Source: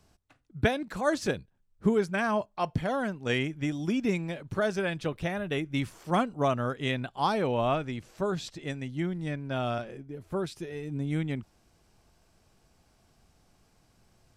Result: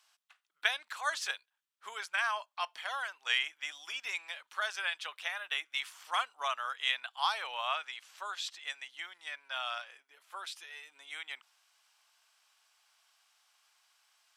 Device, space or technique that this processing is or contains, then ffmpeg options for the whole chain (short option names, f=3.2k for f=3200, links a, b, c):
headphones lying on a table: -af "highpass=f=1k:w=0.5412,highpass=f=1k:w=1.3066,equalizer=f=3.2k:t=o:w=0.56:g=5.5"